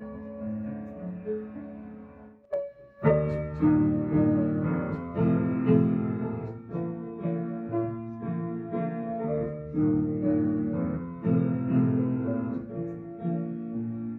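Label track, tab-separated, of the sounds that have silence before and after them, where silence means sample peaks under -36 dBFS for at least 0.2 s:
2.530000	2.680000	sound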